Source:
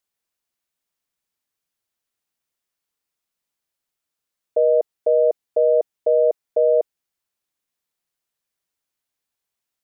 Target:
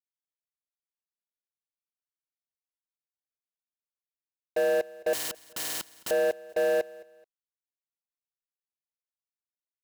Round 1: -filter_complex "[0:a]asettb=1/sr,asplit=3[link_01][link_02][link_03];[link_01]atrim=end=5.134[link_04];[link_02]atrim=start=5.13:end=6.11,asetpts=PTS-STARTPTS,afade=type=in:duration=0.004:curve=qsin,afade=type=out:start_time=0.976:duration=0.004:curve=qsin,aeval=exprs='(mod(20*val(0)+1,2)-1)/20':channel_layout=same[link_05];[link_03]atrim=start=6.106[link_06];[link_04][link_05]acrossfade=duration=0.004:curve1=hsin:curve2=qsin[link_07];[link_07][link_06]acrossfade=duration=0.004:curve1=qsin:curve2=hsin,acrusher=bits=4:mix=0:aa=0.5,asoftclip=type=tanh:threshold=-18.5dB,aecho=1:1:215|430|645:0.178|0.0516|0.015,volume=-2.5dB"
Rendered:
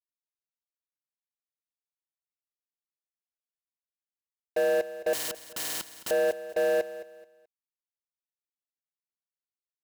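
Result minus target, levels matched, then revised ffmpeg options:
echo-to-direct +6.5 dB
-filter_complex "[0:a]asettb=1/sr,asplit=3[link_01][link_02][link_03];[link_01]atrim=end=5.134[link_04];[link_02]atrim=start=5.13:end=6.11,asetpts=PTS-STARTPTS,afade=type=in:duration=0.004:curve=qsin,afade=type=out:start_time=0.976:duration=0.004:curve=qsin,aeval=exprs='(mod(20*val(0)+1,2)-1)/20':channel_layout=same[link_05];[link_03]atrim=start=6.106[link_06];[link_04][link_05]acrossfade=duration=0.004:curve1=hsin:curve2=qsin[link_07];[link_07][link_06]acrossfade=duration=0.004:curve1=qsin:curve2=hsin,acrusher=bits=4:mix=0:aa=0.5,asoftclip=type=tanh:threshold=-18.5dB,aecho=1:1:215|430:0.0841|0.0244,volume=-2.5dB"

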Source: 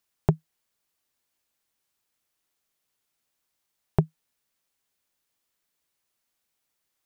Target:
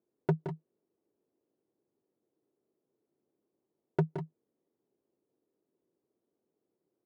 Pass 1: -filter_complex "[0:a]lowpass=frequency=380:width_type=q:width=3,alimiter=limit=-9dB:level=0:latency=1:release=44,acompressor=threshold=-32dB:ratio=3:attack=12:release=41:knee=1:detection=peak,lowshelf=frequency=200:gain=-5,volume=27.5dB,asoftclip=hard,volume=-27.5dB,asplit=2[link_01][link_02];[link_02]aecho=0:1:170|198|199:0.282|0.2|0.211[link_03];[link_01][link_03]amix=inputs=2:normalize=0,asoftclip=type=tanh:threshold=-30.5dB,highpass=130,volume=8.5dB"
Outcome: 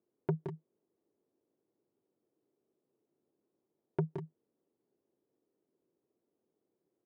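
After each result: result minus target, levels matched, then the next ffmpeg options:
soft clipping: distortion +12 dB; downward compressor: peak gain reduction +5.5 dB
-filter_complex "[0:a]lowpass=frequency=380:width_type=q:width=3,alimiter=limit=-9dB:level=0:latency=1:release=44,acompressor=threshold=-32dB:ratio=3:attack=12:release=41:knee=1:detection=peak,lowshelf=frequency=200:gain=-5,volume=27.5dB,asoftclip=hard,volume=-27.5dB,asplit=2[link_01][link_02];[link_02]aecho=0:1:170|198|199:0.282|0.2|0.211[link_03];[link_01][link_03]amix=inputs=2:normalize=0,asoftclip=type=tanh:threshold=-23.5dB,highpass=130,volume=8.5dB"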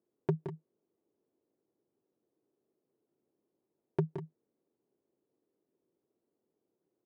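downward compressor: peak gain reduction +5.5 dB
-filter_complex "[0:a]lowpass=frequency=380:width_type=q:width=3,alimiter=limit=-9dB:level=0:latency=1:release=44,acompressor=threshold=-24dB:ratio=3:attack=12:release=41:knee=1:detection=peak,lowshelf=frequency=200:gain=-5,volume=27.5dB,asoftclip=hard,volume=-27.5dB,asplit=2[link_01][link_02];[link_02]aecho=0:1:170|198|199:0.282|0.2|0.211[link_03];[link_01][link_03]amix=inputs=2:normalize=0,asoftclip=type=tanh:threshold=-23.5dB,highpass=130,volume=8.5dB"

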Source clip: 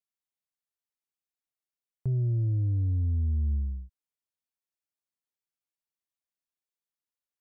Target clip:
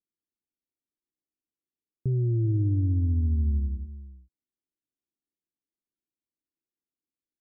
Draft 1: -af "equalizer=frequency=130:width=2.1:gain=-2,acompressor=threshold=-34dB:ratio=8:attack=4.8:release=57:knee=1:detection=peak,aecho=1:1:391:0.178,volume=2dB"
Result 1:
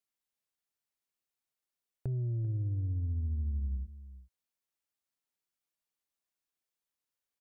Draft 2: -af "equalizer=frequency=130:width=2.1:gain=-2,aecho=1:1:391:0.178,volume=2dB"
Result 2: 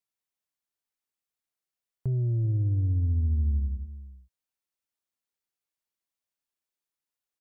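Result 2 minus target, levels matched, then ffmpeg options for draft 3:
250 Hz band −5.5 dB
-af "lowpass=frequency=320:width_type=q:width=3,equalizer=frequency=130:width=2.1:gain=-2,aecho=1:1:391:0.178,volume=2dB"

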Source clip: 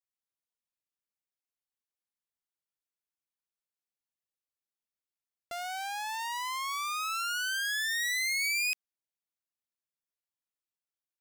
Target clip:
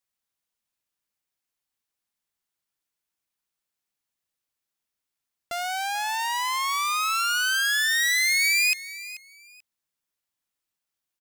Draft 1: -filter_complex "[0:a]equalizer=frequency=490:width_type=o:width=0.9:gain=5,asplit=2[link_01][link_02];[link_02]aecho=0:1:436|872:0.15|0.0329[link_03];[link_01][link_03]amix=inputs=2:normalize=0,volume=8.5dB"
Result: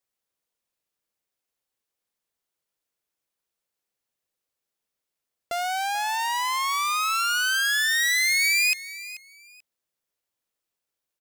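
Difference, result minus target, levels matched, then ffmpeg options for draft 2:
500 Hz band +3.0 dB
-filter_complex "[0:a]equalizer=frequency=490:width_type=o:width=0.9:gain=-3,asplit=2[link_01][link_02];[link_02]aecho=0:1:436|872:0.15|0.0329[link_03];[link_01][link_03]amix=inputs=2:normalize=0,volume=8.5dB"

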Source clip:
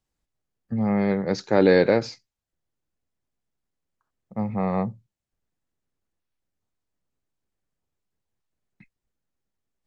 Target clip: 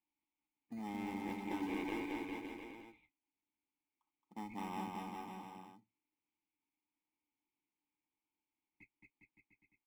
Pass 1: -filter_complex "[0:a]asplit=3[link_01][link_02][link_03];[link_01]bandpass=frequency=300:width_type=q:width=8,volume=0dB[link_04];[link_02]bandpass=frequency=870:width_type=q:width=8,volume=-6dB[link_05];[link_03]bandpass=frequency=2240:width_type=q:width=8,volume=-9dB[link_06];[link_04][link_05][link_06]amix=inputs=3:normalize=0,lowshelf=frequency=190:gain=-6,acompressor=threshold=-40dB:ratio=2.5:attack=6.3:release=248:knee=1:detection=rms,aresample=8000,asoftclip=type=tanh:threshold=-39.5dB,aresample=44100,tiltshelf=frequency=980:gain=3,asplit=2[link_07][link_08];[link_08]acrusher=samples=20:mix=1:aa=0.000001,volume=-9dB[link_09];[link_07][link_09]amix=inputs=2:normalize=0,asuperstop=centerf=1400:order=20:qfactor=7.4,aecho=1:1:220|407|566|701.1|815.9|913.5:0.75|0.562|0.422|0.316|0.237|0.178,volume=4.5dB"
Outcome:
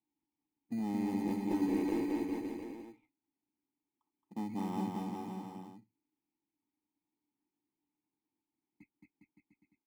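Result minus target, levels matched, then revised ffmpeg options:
1,000 Hz band −6.0 dB
-filter_complex "[0:a]asplit=3[link_01][link_02][link_03];[link_01]bandpass=frequency=300:width_type=q:width=8,volume=0dB[link_04];[link_02]bandpass=frequency=870:width_type=q:width=8,volume=-6dB[link_05];[link_03]bandpass=frequency=2240:width_type=q:width=8,volume=-9dB[link_06];[link_04][link_05][link_06]amix=inputs=3:normalize=0,lowshelf=frequency=190:gain=-6,acompressor=threshold=-40dB:ratio=2.5:attack=6.3:release=248:knee=1:detection=rms,aresample=8000,asoftclip=type=tanh:threshold=-39.5dB,aresample=44100,tiltshelf=frequency=980:gain=-7.5,asplit=2[link_07][link_08];[link_08]acrusher=samples=20:mix=1:aa=0.000001,volume=-9dB[link_09];[link_07][link_09]amix=inputs=2:normalize=0,asuperstop=centerf=1400:order=20:qfactor=7.4,aecho=1:1:220|407|566|701.1|815.9|913.5:0.75|0.562|0.422|0.316|0.237|0.178,volume=4.5dB"

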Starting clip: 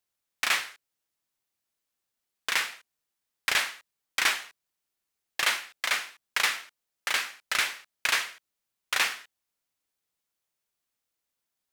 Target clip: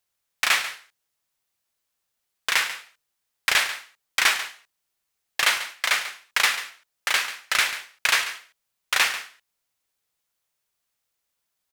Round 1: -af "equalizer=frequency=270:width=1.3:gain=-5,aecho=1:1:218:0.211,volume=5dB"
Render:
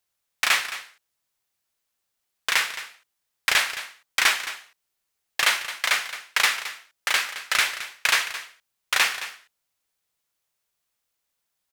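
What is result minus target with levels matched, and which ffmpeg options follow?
echo 77 ms late
-af "equalizer=frequency=270:width=1.3:gain=-5,aecho=1:1:141:0.211,volume=5dB"

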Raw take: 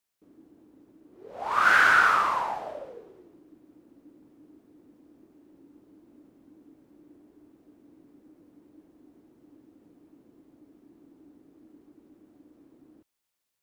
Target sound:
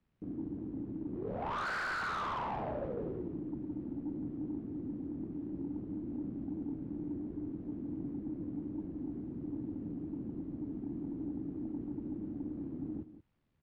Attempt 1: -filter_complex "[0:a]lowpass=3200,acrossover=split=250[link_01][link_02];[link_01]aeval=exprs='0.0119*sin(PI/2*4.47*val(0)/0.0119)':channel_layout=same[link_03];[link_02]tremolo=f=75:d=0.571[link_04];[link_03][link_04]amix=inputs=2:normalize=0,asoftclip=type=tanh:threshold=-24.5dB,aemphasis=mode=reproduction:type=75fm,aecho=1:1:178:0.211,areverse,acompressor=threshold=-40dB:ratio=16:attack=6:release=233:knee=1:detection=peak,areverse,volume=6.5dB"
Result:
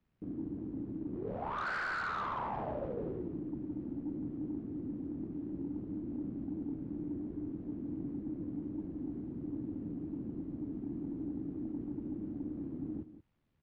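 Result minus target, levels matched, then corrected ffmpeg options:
soft clipping: distortion −5 dB
-filter_complex "[0:a]lowpass=3200,acrossover=split=250[link_01][link_02];[link_01]aeval=exprs='0.0119*sin(PI/2*4.47*val(0)/0.0119)':channel_layout=same[link_03];[link_02]tremolo=f=75:d=0.571[link_04];[link_03][link_04]amix=inputs=2:normalize=0,asoftclip=type=tanh:threshold=-32.5dB,aemphasis=mode=reproduction:type=75fm,aecho=1:1:178:0.211,areverse,acompressor=threshold=-40dB:ratio=16:attack=6:release=233:knee=1:detection=peak,areverse,volume=6.5dB"

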